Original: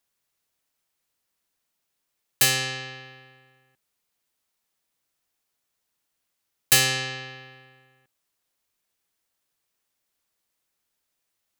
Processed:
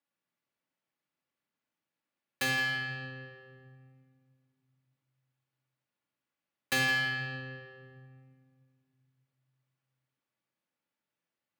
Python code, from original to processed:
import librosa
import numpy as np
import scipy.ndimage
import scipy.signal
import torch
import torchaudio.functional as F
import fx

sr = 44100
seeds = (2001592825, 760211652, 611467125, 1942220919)

y = scipy.signal.sosfilt(scipy.signal.butter(2, 170.0, 'highpass', fs=sr, output='sos'), x)
y = fx.bass_treble(y, sr, bass_db=6, treble_db=-14)
y = y + 10.0 ** (-14.5 / 20.0) * np.pad(y, (int(164 * sr / 1000.0), 0))[:len(y)]
y = fx.room_shoebox(y, sr, seeds[0], volume_m3=3300.0, walls='mixed', distance_m=2.4)
y = y * 10.0 ** (-8.0 / 20.0)